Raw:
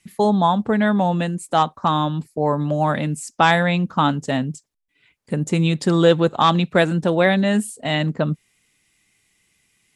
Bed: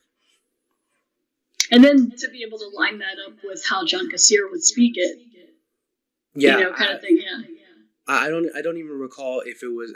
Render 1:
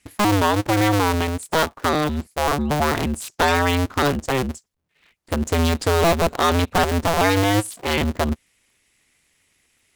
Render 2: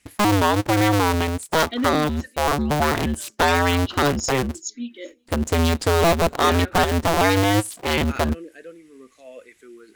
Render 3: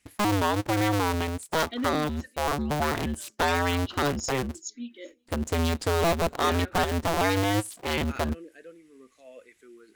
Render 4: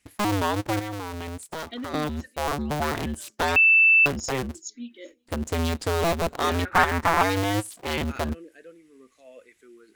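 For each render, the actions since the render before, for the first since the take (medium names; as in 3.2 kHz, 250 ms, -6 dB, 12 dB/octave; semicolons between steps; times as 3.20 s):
cycle switcher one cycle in 2, inverted; hard clipper -13 dBFS, distortion -12 dB
add bed -15.5 dB
trim -6.5 dB
0.79–1.94 s: compression 12:1, threshold -30 dBFS; 3.56–4.06 s: bleep 2.65 kHz -13 dBFS; 6.65–7.23 s: high-order bell 1.4 kHz +10 dB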